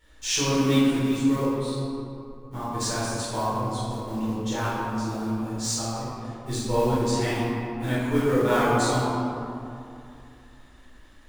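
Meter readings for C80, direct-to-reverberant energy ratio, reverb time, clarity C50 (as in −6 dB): −1.5 dB, −11.5 dB, 2.6 s, −3.5 dB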